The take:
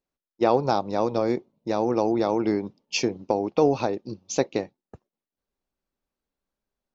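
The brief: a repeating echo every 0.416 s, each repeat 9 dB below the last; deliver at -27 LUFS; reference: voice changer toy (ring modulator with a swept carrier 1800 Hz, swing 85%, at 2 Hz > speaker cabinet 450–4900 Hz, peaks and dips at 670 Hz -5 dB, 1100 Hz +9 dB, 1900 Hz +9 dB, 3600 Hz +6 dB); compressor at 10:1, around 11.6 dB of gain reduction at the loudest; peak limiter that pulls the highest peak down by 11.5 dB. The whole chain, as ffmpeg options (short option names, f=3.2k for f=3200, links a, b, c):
-af "acompressor=threshold=-26dB:ratio=10,alimiter=limit=-24dB:level=0:latency=1,aecho=1:1:416|832|1248|1664:0.355|0.124|0.0435|0.0152,aeval=exprs='val(0)*sin(2*PI*1800*n/s+1800*0.85/2*sin(2*PI*2*n/s))':c=same,highpass=450,equalizer=f=670:t=q:w=4:g=-5,equalizer=f=1.1k:t=q:w=4:g=9,equalizer=f=1.9k:t=q:w=4:g=9,equalizer=f=3.6k:t=q:w=4:g=6,lowpass=f=4.9k:w=0.5412,lowpass=f=4.9k:w=1.3066,volume=5dB"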